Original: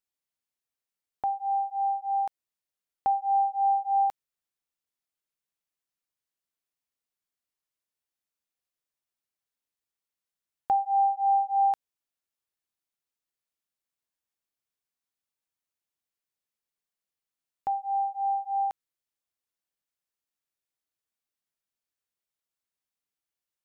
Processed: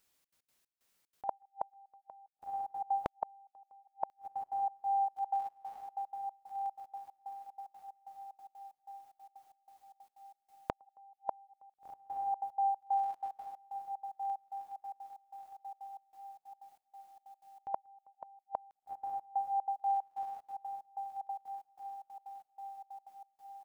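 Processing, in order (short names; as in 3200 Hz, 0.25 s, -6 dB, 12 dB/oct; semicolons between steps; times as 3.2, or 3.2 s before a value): limiter -27 dBFS, peak gain reduction 9 dB; on a send: diffused feedback echo 1.473 s, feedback 46%, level -15.5 dB; on the sum: step gate "xxx.x.xx.." 186 bpm -24 dB; flipped gate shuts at -33 dBFS, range -41 dB; gain +14.5 dB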